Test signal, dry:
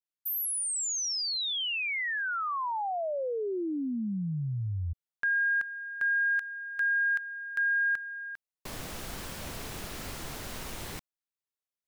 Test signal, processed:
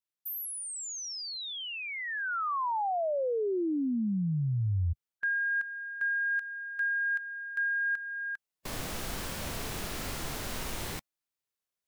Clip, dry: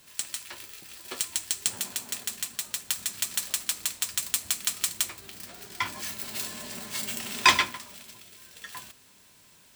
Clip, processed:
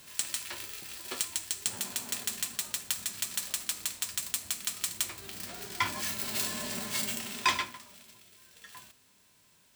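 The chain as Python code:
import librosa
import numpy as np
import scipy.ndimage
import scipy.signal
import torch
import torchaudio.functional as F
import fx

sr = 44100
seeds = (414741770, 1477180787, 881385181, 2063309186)

y = fx.rider(x, sr, range_db=5, speed_s=0.5)
y = fx.hpss(y, sr, part='percussive', gain_db=-5)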